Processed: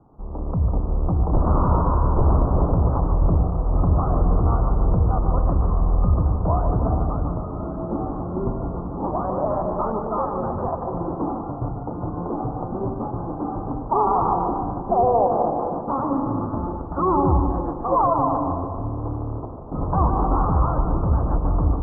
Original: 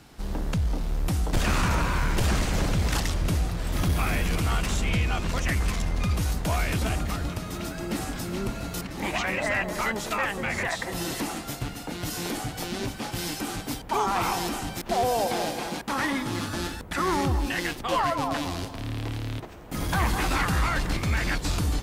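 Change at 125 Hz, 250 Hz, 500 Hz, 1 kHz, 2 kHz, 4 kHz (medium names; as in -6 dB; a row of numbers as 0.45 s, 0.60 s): +6.5 dB, +5.5 dB, +7.5 dB, +7.0 dB, under -20 dB, under -40 dB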